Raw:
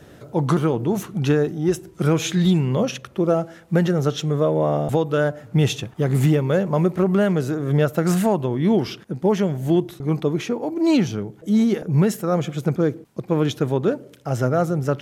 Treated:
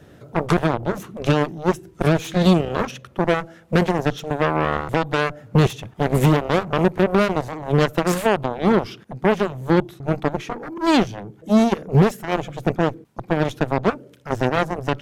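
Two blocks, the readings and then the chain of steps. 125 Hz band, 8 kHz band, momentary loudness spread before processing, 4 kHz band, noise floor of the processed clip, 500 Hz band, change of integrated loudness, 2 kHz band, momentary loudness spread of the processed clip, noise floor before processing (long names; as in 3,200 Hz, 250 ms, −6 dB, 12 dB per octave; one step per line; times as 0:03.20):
−1.5 dB, −3.0 dB, 6 LU, +2.0 dB, −49 dBFS, 0.0 dB, 0.0 dB, +6.0 dB, 9 LU, −47 dBFS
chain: bass and treble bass +2 dB, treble −3 dB
harmonic generator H 7 −12 dB, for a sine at −5.5 dBFS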